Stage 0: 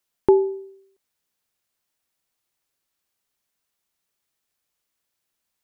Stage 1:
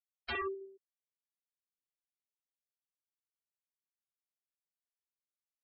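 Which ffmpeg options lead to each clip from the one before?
-af "aecho=1:1:65|130|195|260|325:0.596|0.238|0.0953|0.0381|0.0152,aeval=exprs='0.075*(abs(mod(val(0)/0.075+3,4)-2)-1)':c=same,afftfilt=real='re*gte(hypot(re,im),0.0447)':imag='im*gte(hypot(re,im),0.0447)':win_size=1024:overlap=0.75,volume=-8.5dB"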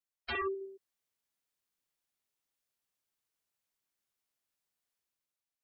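-af "dynaudnorm=f=110:g=11:m=8dB"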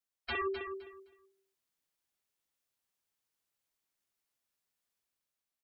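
-af "aecho=1:1:258|516|774:0.376|0.0752|0.015"

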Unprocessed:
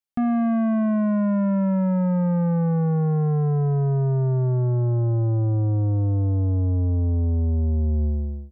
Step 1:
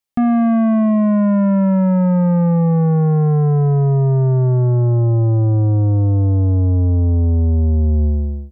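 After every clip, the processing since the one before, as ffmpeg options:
-af "bandreject=f=1.5k:w=12,volume=7dB"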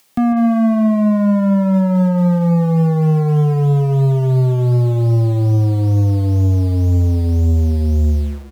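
-filter_complex "[0:a]aecho=1:1:146:0.211,acrossover=split=100[a][b];[a]acrusher=bits=6:mix=0:aa=0.000001[c];[b]acompressor=mode=upward:threshold=-34dB:ratio=2.5[d];[c][d]amix=inputs=2:normalize=0"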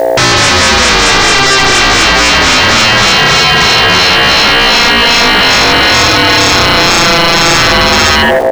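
-af "aeval=exprs='val(0)+0.0355*(sin(2*PI*60*n/s)+sin(2*PI*2*60*n/s)/2+sin(2*PI*3*60*n/s)/3+sin(2*PI*4*60*n/s)/4+sin(2*PI*5*60*n/s)/5)':c=same,aeval=exprs='val(0)*sin(2*PI*590*n/s)':c=same,aeval=exprs='0.501*sin(PI/2*8.91*val(0)/0.501)':c=same,volume=2.5dB"

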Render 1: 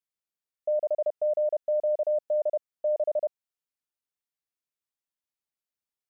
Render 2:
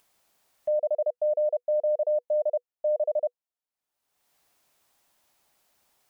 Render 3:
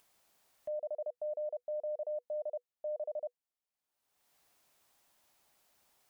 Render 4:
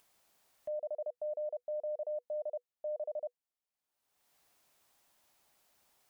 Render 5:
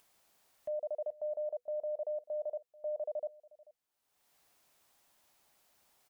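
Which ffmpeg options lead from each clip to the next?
-af "equalizer=f=730:t=o:w=1.2:g=8,bandreject=f=490:w=16,acompressor=mode=upward:threshold=-41dB:ratio=2.5,volume=-5.5dB"
-af "alimiter=level_in=6.5dB:limit=-24dB:level=0:latency=1:release=46,volume=-6.5dB,volume=-2.5dB"
-af anull
-af "aecho=1:1:438:0.0794,volume=1dB"

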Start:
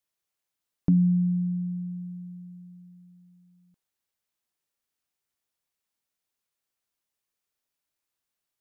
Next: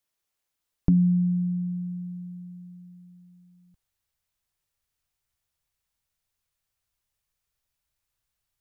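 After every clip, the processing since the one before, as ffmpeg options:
-af "asubboost=boost=9:cutoff=91,volume=2.5dB"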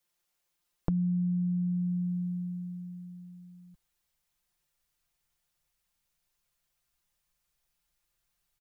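-af "aecho=1:1:5.7:0.89,acompressor=threshold=-28dB:ratio=6"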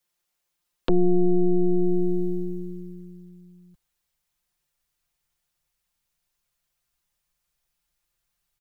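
-af "aeval=exprs='0.2*(cos(1*acos(clip(val(0)/0.2,-1,1)))-cos(1*PI/2))+0.0224*(cos(3*acos(clip(val(0)/0.2,-1,1)))-cos(3*PI/2))+0.00708*(cos(5*acos(clip(val(0)/0.2,-1,1)))-cos(5*PI/2))+0.1*(cos(8*acos(clip(val(0)/0.2,-1,1)))-cos(8*PI/2))':c=same,volume=2.5dB"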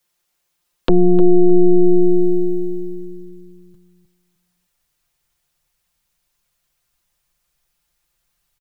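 -filter_complex "[0:a]asplit=2[a][b];[b]adelay=306,lowpass=f=1.1k:p=1,volume=-9dB,asplit=2[c][d];[d]adelay=306,lowpass=f=1.1k:p=1,volume=0.29,asplit=2[e][f];[f]adelay=306,lowpass=f=1.1k:p=1,volume=0.29[g];[a][c][e][g]amix=inputs=4:normalize=0,volume=7.5dB"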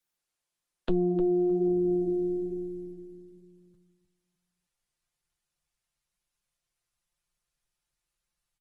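-af "flanger=delay=4.9:depth=4.1:regen=-65:speed=1.1:shape=sinusoidal,volume=-8.5dB" -ar 48000 -c:a libopus -b:a 24k

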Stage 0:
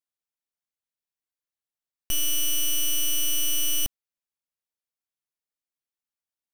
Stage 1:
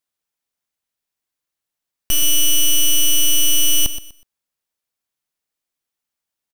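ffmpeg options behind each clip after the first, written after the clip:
-af "aecho=1:1:123|246|369:0.251|0.0628|0.0157,volume=8.5dB"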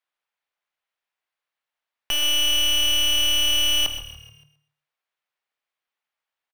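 -filter_complex "[0:a]acrossover=split=530 3400:gain=0.141 1 0.126[a][b][c];[a][b][c]amix=inputs=3:normalize=0,bandreject=f=52.01:t=h:w=4,bandreject=f=104.02:t=h:w=4,bandreject=f=156.03:t=h:w=4,bandreject=f=208.04:t=h:w=4,bandreject=f=260.05:t=h:w=4,bandreject=f=312.06:t=h:w=4,bandreject=f=364.07:t=h:w=4,bandreject=f=416.08:t=h:w=4,bandreject=f=468.09:t=h:w=4,bandreject=f=520.1:t=h:w=4,bandreject=f=572.11:t=h:w=4,bandreject=f=624.12:t=h:w=4,bandreject=f=676.13:t=h:w=4,bandreject=f=728.14:t=h:w=4,bandreject=f=780.15:t=h:w=4,bandreject=f=832.16:t=h:w=4,bandreject=f=884.17:t=h:w=4,bandreject=f=936.18:t=h:w=4,bandreject=f=988.19:t=h:w=4,bandreject=f=1.0402k:t=h:w=4,bandreject=f=1.09221k:t=h:w=4,bandreject=f=1.14422k:t=h:w=4,bandreject=f=1.19623k:t=h:w=4,bandreject=f=1.24824k:t=h:w=4,bandreject=f=1.30025k:t=h:w=4,bandreject=f=1.35226k:t=h:w=4,bandreject=f=1.40427k:t=h:w=4,bandreject=f=1.45628k:t=h:w=4,bandreject=f=1.50829k:t=h:w=4,bandreject=f=1.5603k:t=h:w=4,bandreject=f=1.61231k:t=h:w=4,bandreject=f=1.66432k:t=h:w=4,bandreject=f=1.71633k:t=h:w=4,asplit=5[d][e][f][g][h];[e]adelay=143,afreqshift=-37,volume=-16.5dB[i];[f]adelay=286,afreqshift=-74,volume=-22.5dB[j];[g]adelay=429,afreqshift=-111,volume=-28.5dB[k];[h]adelay=572,afreqshift=-148,volume=-34.6dB[l];[d][i][j][k][l]amix=inputs=5:normalize=0,volume=4.5dB"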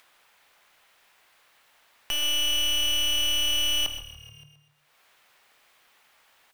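-af "acompressor=mode=upward:threshold=-33dB:ratio=2.5,volume=-4.5dB"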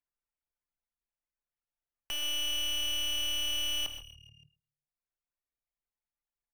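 -af "anlmdn=0.0158,volume=-7.5dB"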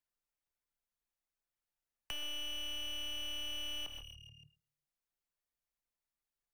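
-filter_complex "[0:a]acrossover=split=200|620|3400[a][b][c][d];[a]acompressor=threshold=-45dB:ratio=4[e];[b]acompressor=threshold=-58dB:ratio=4[f];[c]acompressor=threshold=-43dB:ratio=4[g];[d]acompressor=threshold=-53dB:ratio=4[h];[e][f][g][h]amix=inputs=4:normalize=0"

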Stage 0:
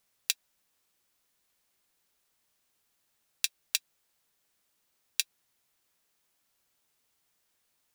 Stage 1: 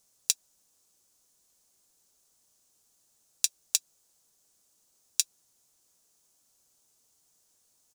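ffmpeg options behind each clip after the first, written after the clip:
-filter_complex "[0:a]firequalizer=gain_entry='entry(520,0);entry(940,-3);entry(2000,-10);entry(6500,8);entry(14000,-2)':delay=0.05:min_phase=1,asplit=2[a][b];[b]alimiter=limit=-10.5dB:level=0:latency=1:release=44,volume=3dB[c];[a][c]amix=inputs=2:normalize=0,volume=-3dB"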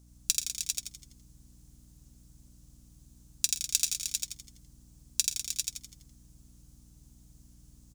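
-filter_complex "[0:a]asplit=2[a][b];[b]aecho=0:1:47|117|199|308|400:0.188|0.141|0.299|0.376|0.531[c];[a][c]amix=inputs=2:normalize=0,aeval=exprs='val(0)+0.00178*(sin(2*PI*60*n/s)+sin(2*PI*2*60*n/s)/2+sin(2*PI*3*60*n/s)/3+sin(2*PI*4*60*n/s)/4+sin(2*PI*5*60*n/s)/5)':c=same,asplit=2[d][e];[e]asplit=6[f][g][h][i][j][k];[f]adelay=83,afreqshift=-99,volume=-3.5dB[l];[g]adelay=166,afreqshift=-198,volume=-10.4dB[m];[h]adelay=249,afreqshift=-297,volume=-17.4dB[n];[i]adelay=332,afreqshift=-396,volume=-24.3dB[o];[j]adelay=415,afreqshift=-495,volume=-31.2dB[p];[k]adelay=498,afreqshift=-594,volume=-38.2dB[q];[l][m][n][o][p][q]amix=inputs=6:normalize=0[r];[d][r]amix=inputs=2:normalize=0,volume=-1.5dB"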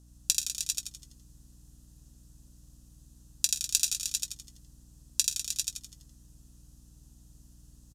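-filter_complex "[0:a]aresample=32000,aresample=44100,asuperstop=centerf=2200:order=8:qfactor=6,asplit=2[a][b];[b]adelay=19,volume=-14dB[c];[a][c]amix=inputs=2:normalize=0,volume=1dB"

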